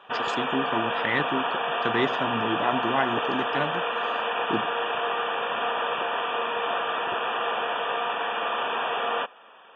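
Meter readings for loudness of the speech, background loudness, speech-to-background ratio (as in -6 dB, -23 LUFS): -30.0 LUFS, -27.0 LUFS, -3.0 dB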